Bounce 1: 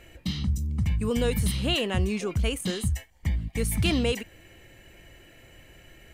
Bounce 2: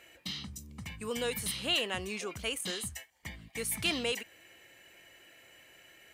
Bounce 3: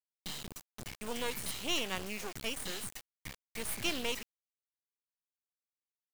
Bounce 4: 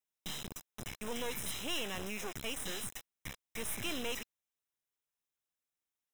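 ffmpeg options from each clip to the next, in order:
-af "highpass=f=830:p=1,volume=-1.5dB"
-af "acrusher=bits=4:dc=4:mix=0:aa=0.000001"
-af "aeval=exprs='(tanh(20*val(0)+0.75)-tanh(0.75))/20':c=same,asuperstop=centerf=4500:order=20:qfactor=5.3,volume=7.5dB"

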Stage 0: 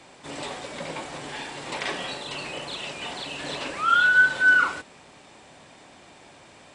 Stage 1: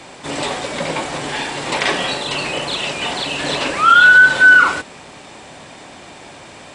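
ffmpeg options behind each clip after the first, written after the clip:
-af "alimiter=level_in=13dB:limit=-1dB:release=50:level=0:latency=1,volume=-1dB"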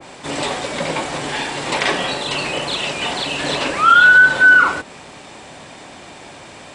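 -af "adynamicequalizer=threshold=0.0708:dfrequency=1800:dqfactor=0.7:tfrequency=1800:tqfactor=0.7:attack=5:release=100:ratio=0.375:range=2.5:mode=cutabove:tftype=highshelf"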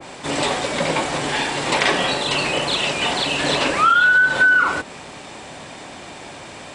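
-af "acompressor=threshold=-13dB:ratio=10,volume=1.5dB"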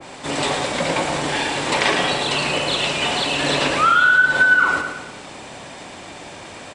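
-af "aecho=1:1:111|222|333|444|555:0.473|0.213|0.0958|0.0431|0.0194,volume=-1dB"

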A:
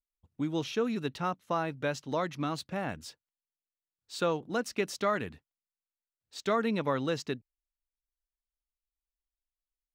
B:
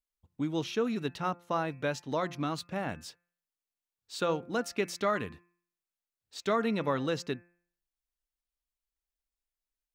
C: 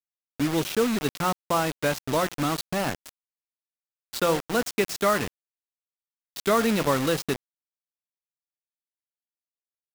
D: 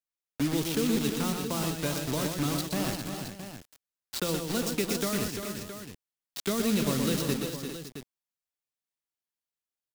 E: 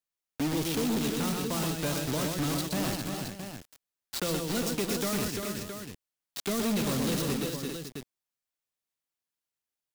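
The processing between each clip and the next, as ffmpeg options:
-af "bandreject=f=173.8:t=h:w=4,bandreject=f=347.6:t=h:w=4,bandreject=f=521.4:t=h:w=4,bandreject=f=695.2:t=h:w=4,bandreject=f=869:t=h:w=4,bandreject=f=1.0428k:t=h:w=4,bandreject=f=1.2166k:t=h:w=4,bandreject=f=1.3904k:t=h:w=4,bandreject=f=1.5642k:t=h:w=4,bandreject=f=1.738k:t=h:w=4,bandreject=f=1.9118k:t=h:w=4,bandreject=f=2.0856k:t=h:w=4,bandreject=f=2.2594k:t=h:w=4,bandreject=f=2.4332k:t=h:w=4,bandreject=f=2.607k:t=h:w=4"
-af "acrusher=bits=5:mix=0:aa=0.000001,volume=6.5dB"
-filter_complex "[0:a]acrossover=split=350|3000[a][b][c];[b]acompressor=threshold=-36dB:ratio=6[d];[a][d][c]amix=inputs=3:normalize=0,aecho=1:1:123|345|403|559|668:0.531|0.398|0.316|0.158|0.282,volume=-1.5dB"
-af "asoftclip=type=hard:threshold=-27dB,volume=1.5dB"

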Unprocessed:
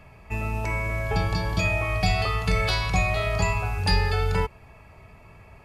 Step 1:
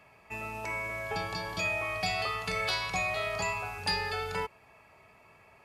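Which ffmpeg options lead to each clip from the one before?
-af "highpass=f=490:p=1,volume=-4dB"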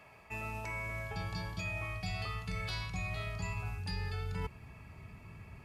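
-af "asubboost=boost=10.5:cutoff=190,areverse,acompressor=threshold=-38dB:ratio=4,areverse,volume=1dB"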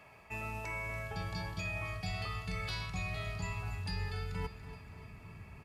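-af "aecho=1:1:286|572|858|1144|1430:0.224|0.116|0.0605|0.0315|0.0164"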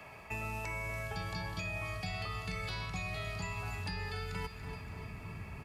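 -filter_complex "[0:a]acrossover=split=190|940|3600[a][b][c][d];[a]acompressor=threshold=-48dB:ratio=4[e];[b]acompressor=threshold=-52dB:ratio=4[f];[c]acompressor=threshold=-50dB:ratio=4[g];[d]acompressor=threshold=-57dB:ratio=4[h];[e][f][g][h]amix=inputs=4:normalize=0,volume=6.5dB"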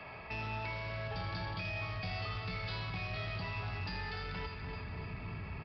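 -af "aresample=11025,asoftclip=type=tanh:threshold=-38.5dB,aresample=44100,aecho=1:1:81:0.398,volume=3dB"

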